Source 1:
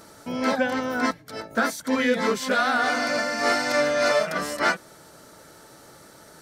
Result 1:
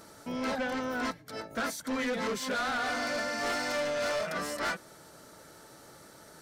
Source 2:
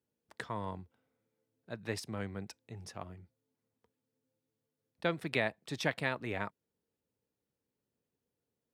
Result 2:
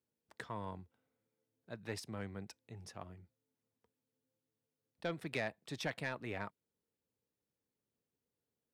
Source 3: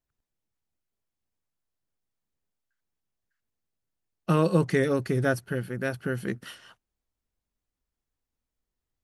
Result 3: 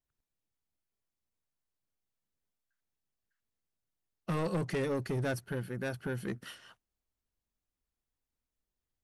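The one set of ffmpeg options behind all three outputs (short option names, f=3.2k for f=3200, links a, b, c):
-af "asoftclip=type=tanh:threshold=-24dB,volume=-4dB"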